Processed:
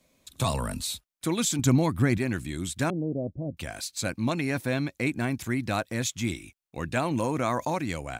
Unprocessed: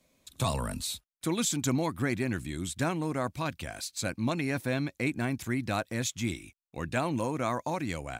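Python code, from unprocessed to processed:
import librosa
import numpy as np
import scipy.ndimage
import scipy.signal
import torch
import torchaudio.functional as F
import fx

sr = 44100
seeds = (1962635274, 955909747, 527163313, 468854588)

y = fx.low_shelf(x, sr, hz=200.0, db=10.0, at=(1.59, 2.18))
y = fx.steep_lowpass(y, sr, hz=620.0, slope=48, at=(2.9, 3.57))
y = fx.env_flatten(y, sr, amount_pct=50, at=(7.11, 7.78))
y = F.gain(torch.from_numpy(y), 2.5).numpy()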